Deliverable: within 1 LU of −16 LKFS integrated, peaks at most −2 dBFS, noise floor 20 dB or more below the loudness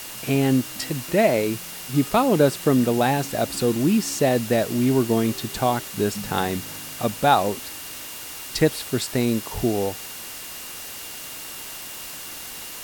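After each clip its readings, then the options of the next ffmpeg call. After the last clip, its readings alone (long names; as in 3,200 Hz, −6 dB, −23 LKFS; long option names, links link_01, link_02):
interfering tone 2,800 Hz; level of the tone −46 dBFS; background noise floor −36 dBFS; target noise floor −44 dBFS; integrated loudness −23.5 LKFS; sample peak −3.5 dBFS; target loudness −16.0 LKFS
→ -af "bandreject=frequency=2800:width=30"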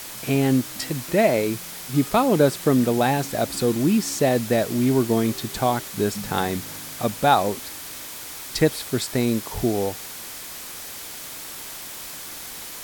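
interfering tone none found; background noise floor −37 dBFS; target noise floor −44 dBFS
→ -af "afftdn=noise_reduction=7:noise_floor=-37"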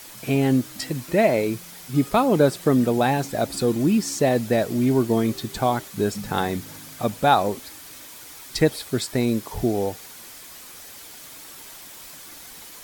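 background noise floor −42 dBFS; target noise floor −43 dBFS
→ -af "afftdn=noise_reduction=6:noise_floor=-42"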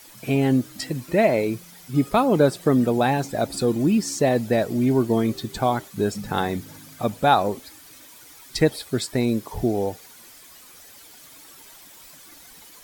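background noise floor −47 dBFS; integrated loudness −22.5 LKFS; sample peak −4.0 dBFS; target loudness −16.0 LKFS
→ -af "volume=6.5dB,alimiter=limit=-2dB:level=0:latency=1"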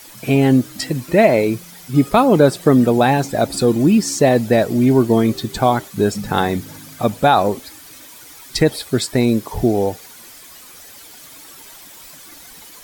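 integrated loudness −16.5 LKFS; sample peak −2.0 dBFS; background noise floor −41 dBFS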